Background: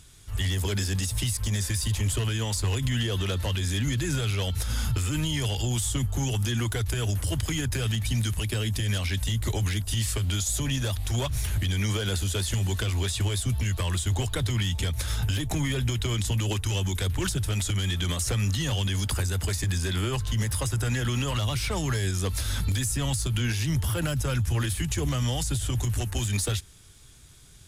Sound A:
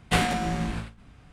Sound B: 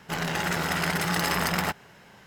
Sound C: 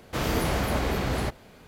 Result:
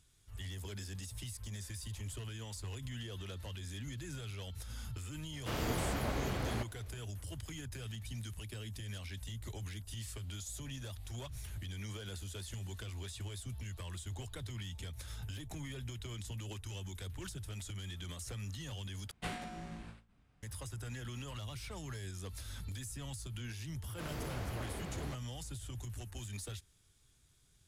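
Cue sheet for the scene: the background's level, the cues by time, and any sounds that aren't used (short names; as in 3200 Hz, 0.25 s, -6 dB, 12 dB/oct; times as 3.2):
background -17 dB
5.33 add C -10 dB
19.11 replace with A -18 dB
23.85 add C -17 dB
not used: B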